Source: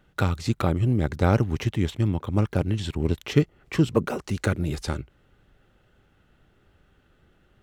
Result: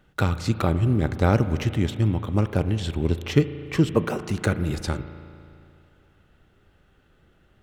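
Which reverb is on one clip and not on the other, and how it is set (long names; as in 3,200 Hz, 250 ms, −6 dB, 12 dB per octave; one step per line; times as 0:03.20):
spring reverb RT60 2.5 s, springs 36 ms, chirp 80 ms, DRR 11.5 dB
level +1 dB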